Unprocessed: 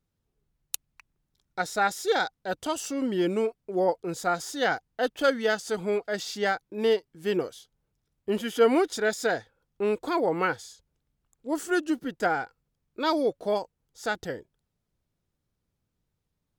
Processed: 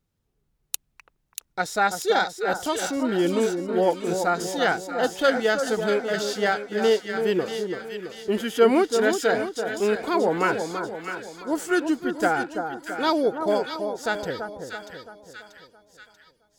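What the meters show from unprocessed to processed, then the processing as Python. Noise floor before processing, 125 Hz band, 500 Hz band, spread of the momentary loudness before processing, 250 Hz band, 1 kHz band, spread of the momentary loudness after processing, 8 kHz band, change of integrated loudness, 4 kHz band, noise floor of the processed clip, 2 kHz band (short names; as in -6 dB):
-81 dBFS, +4.5 dB, +4.0 dB, 12 LU, +4.0 dB, +4.0 dB, 12 LU, +4.0 dB, +3.5 dB, +4.0 dB, -72 dBFS, +4.0 dB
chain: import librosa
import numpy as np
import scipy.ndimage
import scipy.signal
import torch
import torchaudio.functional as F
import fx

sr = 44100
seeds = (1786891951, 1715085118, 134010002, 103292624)

y = fx.echo_split(x, sr, split_hz=1400.0, low_ms=334, high_ms=637, feedback_pct=52, wet_db=-6.5)
y = y * librosa.db_to_amplitude(3.0)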